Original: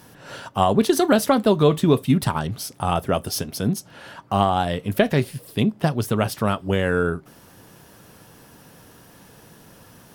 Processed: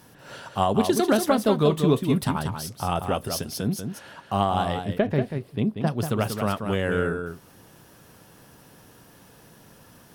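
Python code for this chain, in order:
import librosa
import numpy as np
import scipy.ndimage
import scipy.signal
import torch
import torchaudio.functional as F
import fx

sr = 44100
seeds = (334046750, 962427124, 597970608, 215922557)

p1 = fx.lowpass(x, sr, hz=1300.0, slope=6, at=(4.84, 5.86), fade=0.02)
p2 = p1 + fx.echo_single(p1, sr, ms=188, db=-7.0, dry=0)
y = p2 * 10.0 ** (-4.0 / 20.0)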